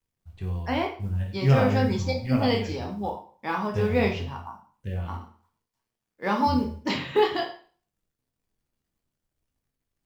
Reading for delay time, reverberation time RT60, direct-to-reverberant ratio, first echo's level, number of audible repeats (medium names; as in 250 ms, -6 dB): no echo, 0.45 s, 1.0 dB, no echo, no echo